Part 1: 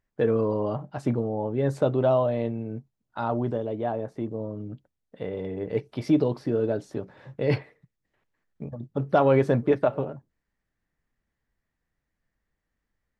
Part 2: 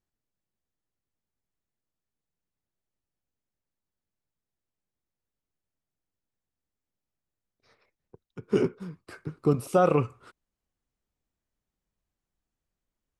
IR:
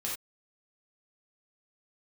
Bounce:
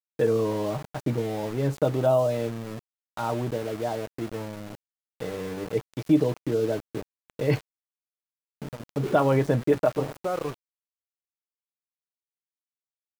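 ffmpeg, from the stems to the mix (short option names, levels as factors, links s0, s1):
-filter_complex "[0:a]aecho=1:1:6.4:0.31,volume=0.891[s0];[1:a]acrossover=split=2600[s1][s2];[s2]acompressor=threshold=0.00126:ratio=4:attack=1:release=60[s3];[s1][s3]amix=inputs=2:normalize=0,equalizer=f=180:w=1.5:g=-5.5,acontrast=88,adelay=500,volume=0.211[s4];[s0][s4]amix=inputs=2:normalize=0,aeval=exprs='val(0)*gte(abs(val(0)),0.0178)':c=same"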